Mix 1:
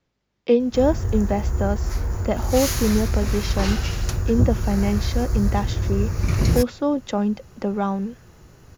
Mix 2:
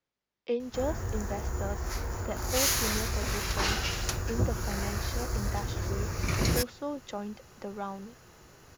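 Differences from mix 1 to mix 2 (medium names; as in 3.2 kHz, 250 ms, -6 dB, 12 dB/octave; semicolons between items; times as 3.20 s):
speech -10.0 dB; master: add bass shelf 280 Hz -11.5 dB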